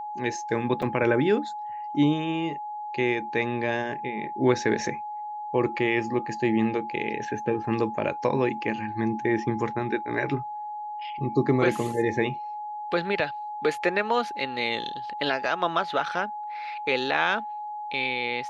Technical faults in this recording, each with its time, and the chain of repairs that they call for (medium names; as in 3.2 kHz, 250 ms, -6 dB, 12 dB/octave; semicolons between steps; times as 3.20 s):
whine 840 Hz -32 dBFS
0.82–0.83 s: dropout 5.3 ms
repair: band-stop 840 Hz, Q 30; interpolate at 0.82 s, 5.3 ms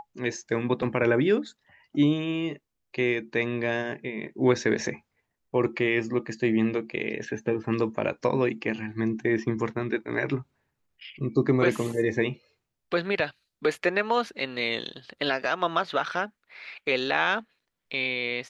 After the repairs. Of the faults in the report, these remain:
nothing left